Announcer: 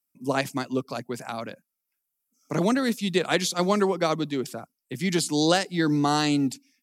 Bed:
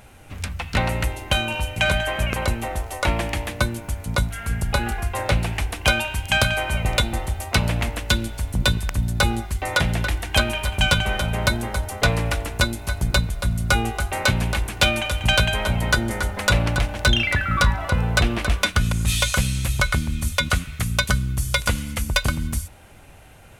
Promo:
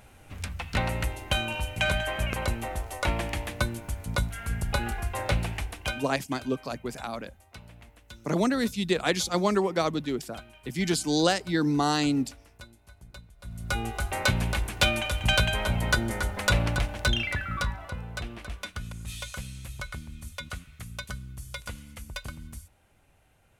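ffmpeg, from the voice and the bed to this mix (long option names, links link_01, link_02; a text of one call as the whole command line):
ffmpeg -i stem1.wav -i stem2.wav -filter_complex "[0:a]adelay=5750,volume=-2dB[link_01];[1:a]volume=16.5dB,afade=type=out:start_time=5.42:duration=0.76:silence=0.0841395,afade=type=in:start_time=13.38:duration=0.71:silence=0.0749894,afade=type=out:start_time=16.63:duration=1.41:silence=0.251189[link_02];[link_01][link_02]amix=inputs=2:normalize=0" out.wav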